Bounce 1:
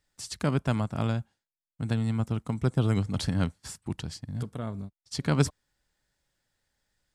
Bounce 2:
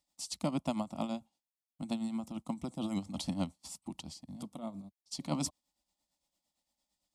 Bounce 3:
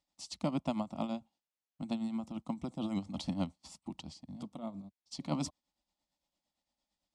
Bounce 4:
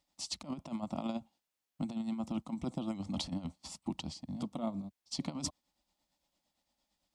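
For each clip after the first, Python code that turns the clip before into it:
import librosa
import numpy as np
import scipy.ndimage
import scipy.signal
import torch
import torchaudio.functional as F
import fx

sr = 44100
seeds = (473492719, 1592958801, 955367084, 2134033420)

y1 = x * (1.0 - 0.6 / 2.0 + 0.6 / 2.0 * np.cos(2.0 * np.pi * 8.8 * (np.arange(len(x)) / sr)))
y1 = fx.highpass(y1, sr, hz=130.0, slope=6)
y1 = fx.fixed_phaser(y1, sr, hz=430.0, stages=6)
y2 = fx.air_absorb(y1, sr, metres=80.0)
y3 = fx.over_compress(y2, sr, threshold_db=-38.0, ratio=-0.5)
y3 = F.gain(torch.from_numpy(y3), 2.5).numpy()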